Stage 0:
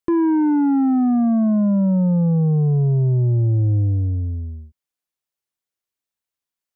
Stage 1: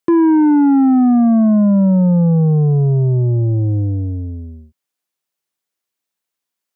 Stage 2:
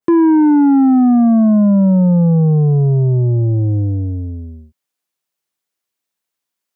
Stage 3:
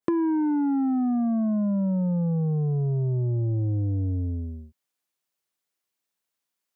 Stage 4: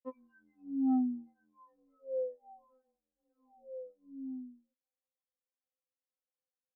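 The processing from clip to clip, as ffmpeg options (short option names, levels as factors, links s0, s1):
-af "highpass=130,volume=2"
-af "adynamicequalizer=threshold=0.0224:dfrequency=1700:dqfactor=0.7:tfrequency=1700:tqfactor=0.7:attack=5:release=100:ratio=0.375:range=2:mode=cutabove:tftype=highshelf,volume=1.12"
-af "acompressor=threshold=0.112:ratio=6,volume=0.668"
-af "bandpass=f=490:t=q:w=2.3:csg=0,afftfilt=real='re*3.46*eq(mod(b,12),0)':imag='im*3.46*eq(mod(b,12),0)':win_size=2048:overlap=0.75,volume=0.794"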